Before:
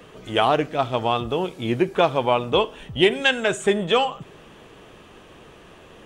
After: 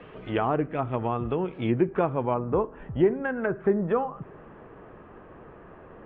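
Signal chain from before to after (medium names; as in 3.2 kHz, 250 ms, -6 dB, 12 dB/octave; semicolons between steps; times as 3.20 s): low-pass 2.7 kHz 24 dB/octave, from 2.34 s 1.7 kHz; low-pass that closes with the level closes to 1.1 kHz, closed at -18.5 dBFS; dynamic bell 670 Hz, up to -8 dB, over -33 dBFS, Q 1.1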